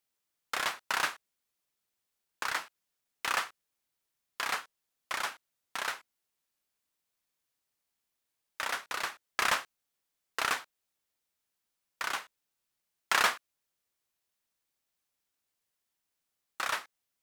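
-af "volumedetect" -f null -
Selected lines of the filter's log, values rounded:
mean_volume: -38.9 dB
max_volume: -10.6 dB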